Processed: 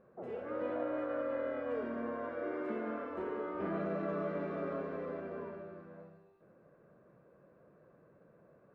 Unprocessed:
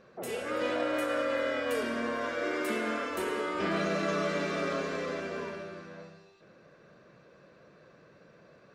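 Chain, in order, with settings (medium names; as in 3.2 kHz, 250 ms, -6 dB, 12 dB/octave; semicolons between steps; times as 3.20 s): low-pass 1.1 kHz 12 dB/octave; trim -5 dB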